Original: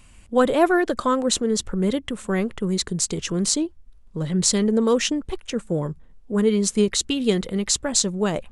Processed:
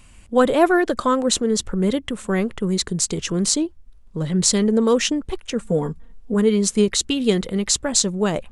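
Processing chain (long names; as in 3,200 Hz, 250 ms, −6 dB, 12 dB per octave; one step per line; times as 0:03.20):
0:05.61–0:06.34: comb filter 4.3 ms, depth 85%
level +2 dB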